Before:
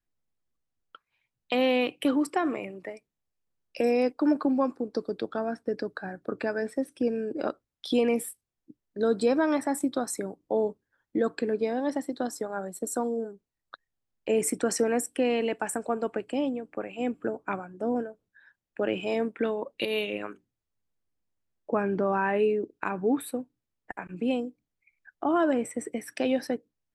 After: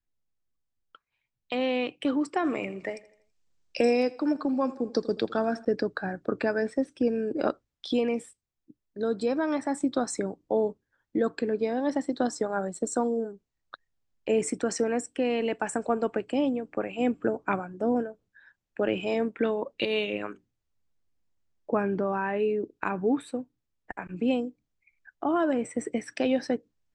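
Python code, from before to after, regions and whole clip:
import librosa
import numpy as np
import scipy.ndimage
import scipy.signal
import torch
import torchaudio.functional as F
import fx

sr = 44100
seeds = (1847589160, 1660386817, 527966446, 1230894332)

y = fx.chain(x, sr, fx.high_shelf(hz=3200.0, db=7.5),
    fx.echo_feedback(ms=82, feedback_pct=47, wet_db=-19), at=(2.44, 5.65))
y = scipy.signal.sosfilt(scipy.signal.butter(6, 8000.0, 'lowpass', fs=sr, output='sos'), y)
y = fx.rider(y, sr, range_db=4, speed_s=0.5)
y = fx.low_shelf(y, sr, hz=100.0, db=6.0)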